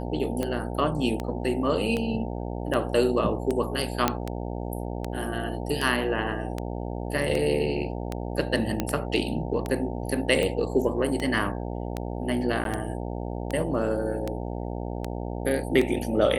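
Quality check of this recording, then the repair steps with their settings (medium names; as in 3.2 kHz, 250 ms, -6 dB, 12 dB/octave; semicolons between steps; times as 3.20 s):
buzz 60 Hz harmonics 15 -32 dBFS
tick 78 rpm -15 dBFS
4.08 s: pop -6 dBFS
8.80 s: pop -11 dBFS
12.64–12.65 s: dropout 12 ms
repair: de-click; de-hum 60 Hz, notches 15; interpolate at 12.64 s, 12 ms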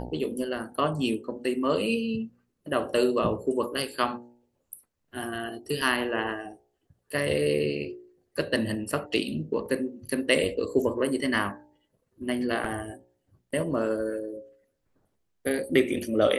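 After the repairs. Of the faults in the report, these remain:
nothing left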